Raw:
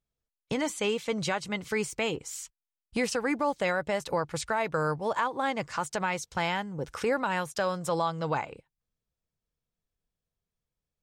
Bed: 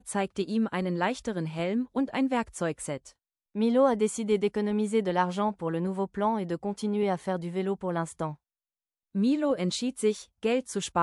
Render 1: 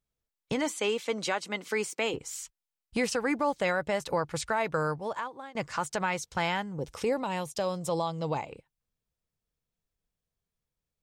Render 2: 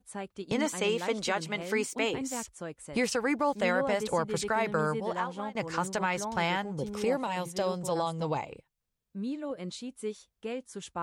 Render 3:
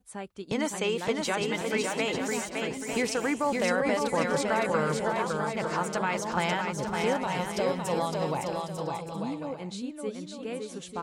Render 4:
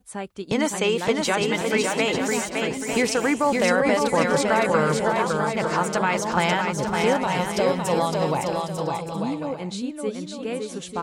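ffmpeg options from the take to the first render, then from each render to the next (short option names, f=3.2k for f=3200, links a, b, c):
-filter_complex "[0:a]asettb=1/sr,asplit=3[a][b][c];[a]atrim=end=0.694[d];[b]atrim=start=0.69:end=2.14,asetpts=PTS-STARTPTS,afade=t=in:d=0.004:c=qsin,afade=t=out:st=1.446:d=0.004:c=qsin,highpass=f=230:w=0.5412,highpass=f=230:w=1.3066[e];[c]atrim=start=2.136[f];[d][e]acrossfade=d=0.004:c1=hsin:c2=qsin[g];[g][f]acrossfade=d=0.004:c1=qsin:c2=hsin,asettb=1/sr,asplit=3[h][i][j];[h]atrim=end=6.794[k];[i]atrim=start=6.79:end=8.51,asetpts=PTS-STARTPTS,afade=t=in:d=0.004:c=qsin,afade=t=out:st=1.716:d=0.004:c=qsin,equalizer=f=1.5k:w=1.9:g=-12.5[l];[j]atrim=start=8.506[m];[k][l]acrossfade=d=0.004:c1=hsin:c2=qsin[n];[n][m]acrossfade=d=0.004:c1=qsin:c2=hsin,asplit=2[o][p];[o]atrim=end=5.55,asetpts=PTS-STARTPTS,afade=t=out:st=4.74:d=0.81:silence=0.0668344[q];[p]atrim=start=5.55,asetpts=PTS-STARTPTS,afade=t=in:d=0.004:c=hsin:silence=0.0668344[r];[q][r]concat=n=2:v=0:a=1"
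-filter_complex "[1:a]volume=-10dB[a];[0:a][a]amix=inputs=2:normalize=0"
-af "aecho=1:1:560|896|1098|1219|1291:0.631|0.398|0.251|0.158|0.1"
-af "volume=6.5dB"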